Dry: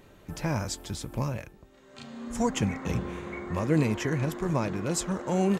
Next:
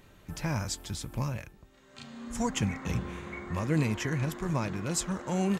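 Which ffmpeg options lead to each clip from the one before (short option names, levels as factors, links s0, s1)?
-af "equalizer=f=450:w=0.65:g=-6"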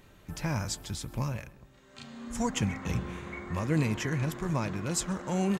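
-filter_complex "[0:a]asplit=2[s0][s1];[s1]adelay=132,lowpass=f=2400:p=1,volume=0.106,asplit=2[s2][s3];[s3]adelay=132,lowpass=f=2400:p=1,volume=0.49,asplit=2[s4][s5];[s5]adelay=132,lowpass=f=2400:p=1,volume=0.49,asplit=2[s6][s7];[s7]adelay=132,lowpass=f=2400:p=1,volume=0.49[s8];[s0][s2][s4][s6][s8]amix=inputs=5:normalize=0"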